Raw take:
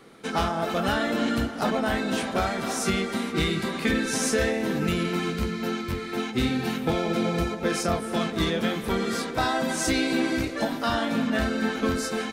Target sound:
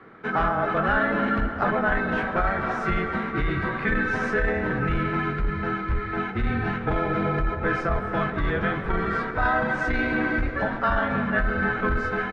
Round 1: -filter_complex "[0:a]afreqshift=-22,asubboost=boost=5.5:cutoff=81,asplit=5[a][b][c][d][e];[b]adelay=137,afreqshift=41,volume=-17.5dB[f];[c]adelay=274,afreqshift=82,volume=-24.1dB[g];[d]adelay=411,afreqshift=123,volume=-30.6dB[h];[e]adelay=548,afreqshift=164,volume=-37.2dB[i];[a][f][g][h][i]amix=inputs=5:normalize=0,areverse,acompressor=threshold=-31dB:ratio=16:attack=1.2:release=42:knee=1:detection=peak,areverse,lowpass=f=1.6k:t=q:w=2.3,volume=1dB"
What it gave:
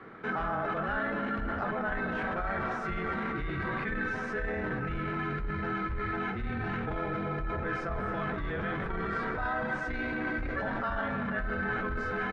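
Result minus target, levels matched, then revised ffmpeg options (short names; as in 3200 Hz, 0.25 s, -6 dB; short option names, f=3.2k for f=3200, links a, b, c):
compressor: peak gain reduction +10.5 dB
-filter_complex "[0:a]afreqshift=-22,asubboost=boost=5.5:cutoff=81,asplit=5[a][b][c][d][e];[b]adelay=137,afreqshift=41,volume=-17.5dB[f];[c]adelay=274,afreqshift=82,volume=-24.1dB[g];[d]adelay=411,afreqshift=123,volume=-30.6dB[h];[e]adelay=548,afreqshift=164,volume=-37.2dB[i];[a][f][g][h][i]amix=inputs=5:normalize=0,areverse,acompressor=threshold=-20dB:ratio=16:attack=1.2:release=42:knee=1:detection=peak,areverse,lowpass=f=1.6k:t=q:w=2.3,volume=1dB"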